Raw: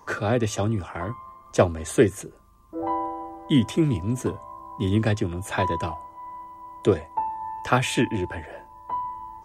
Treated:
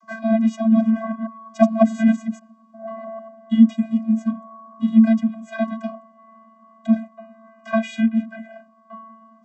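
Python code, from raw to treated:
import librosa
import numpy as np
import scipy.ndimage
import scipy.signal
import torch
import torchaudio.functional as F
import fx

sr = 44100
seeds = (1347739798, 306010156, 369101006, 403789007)

y = fx.reverse_delay(x, sr, ms=113, wet_db=0, at=(0.58, 3.27))
y = fx.vocoder(y, sr, bands=32, carrier='square', carrier_hz=223.0)
y = F.gain(torch.from_numpy(y), 5.0).numpy()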